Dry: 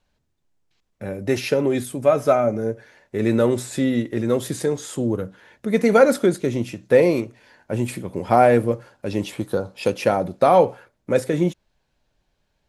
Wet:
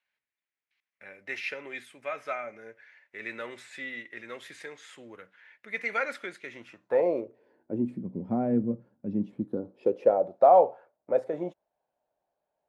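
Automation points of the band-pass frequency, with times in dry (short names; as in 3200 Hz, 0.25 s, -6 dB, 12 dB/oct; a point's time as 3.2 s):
band-pass, Q 3
6.47 s 2100 Hz
7.14 s 590 Hz
8.04 s 210 Hz
9.37 s 210 Hz
10.34 s 680 Hz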